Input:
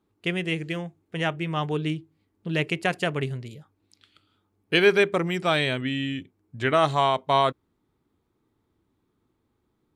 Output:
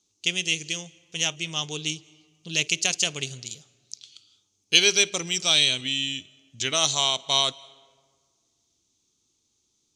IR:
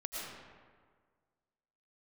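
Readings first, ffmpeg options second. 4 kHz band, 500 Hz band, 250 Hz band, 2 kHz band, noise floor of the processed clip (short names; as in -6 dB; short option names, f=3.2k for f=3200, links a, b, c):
+10.0 dB, -9.0 dB, -9.0 dB, -0.5 dB, -73 dBFS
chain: -filter_complex "[0:a]lowpass=f=6.3k:t=q:w=6.6,aexciter=amount=9.1:drive=5:freq=2.6k,asplit=2[a][b];[1:a]atrim=start_sample=2205,adelay=54[c];[b][c]afir=irnorm=-1:irlink=0,volume=-24dB[d];[a][d]amix=inputs=2:normalize=0,volume=-9dB"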